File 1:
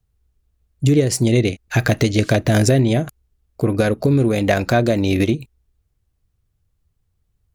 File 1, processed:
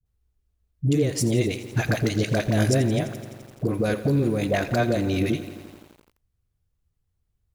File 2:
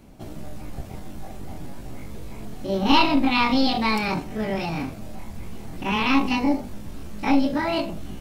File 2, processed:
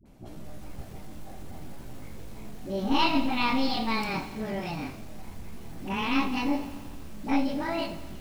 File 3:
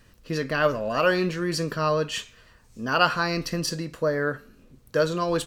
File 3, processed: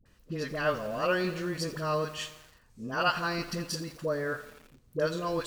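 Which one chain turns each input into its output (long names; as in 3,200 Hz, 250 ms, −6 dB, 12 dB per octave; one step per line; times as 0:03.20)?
all-pass dispersion highs, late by 58 ms, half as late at 590 Hz
feedback echo at a low word length 85 ms, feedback 80%, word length 6 bits, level −14.5 dB
level −6.5 dB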